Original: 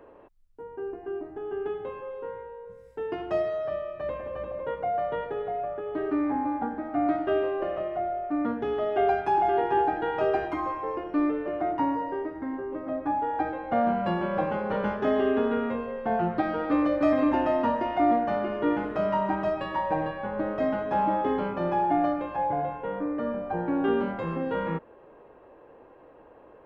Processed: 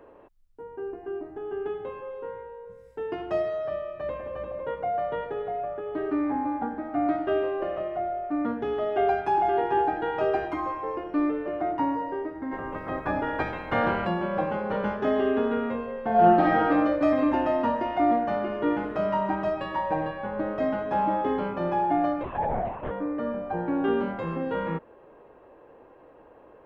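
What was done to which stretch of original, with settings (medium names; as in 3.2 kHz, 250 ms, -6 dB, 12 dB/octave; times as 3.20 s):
12.51–14.05 s: spectral peaks clipped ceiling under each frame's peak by 21 dB
16.09–16.69 s: reverb throw, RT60 1.1 s, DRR -5 dB
22.23–22.91 s: LPC vocoder at 8 kHz whisper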